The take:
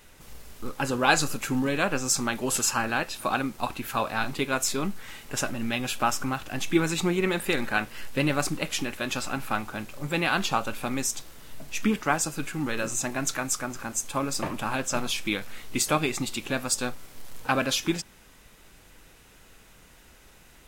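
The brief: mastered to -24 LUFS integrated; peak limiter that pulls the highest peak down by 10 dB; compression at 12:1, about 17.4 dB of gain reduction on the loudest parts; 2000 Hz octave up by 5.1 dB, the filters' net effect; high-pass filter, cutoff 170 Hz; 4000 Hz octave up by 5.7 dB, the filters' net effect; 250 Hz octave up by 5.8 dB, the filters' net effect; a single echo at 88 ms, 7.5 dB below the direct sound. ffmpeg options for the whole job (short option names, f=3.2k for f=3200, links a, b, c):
-af "highpass=170,equalizer=f=250:t=o:g=8,equalizer=f=2k:t=o:g=5.5,equalizer=f=4k:t=o:g=5.5,acompressor=threshold=-29dB:ratio=12,alimiter=limit=-22.5dB:level=0:latency=1,aecho=1:1:88:0.422,volume=10.5dB"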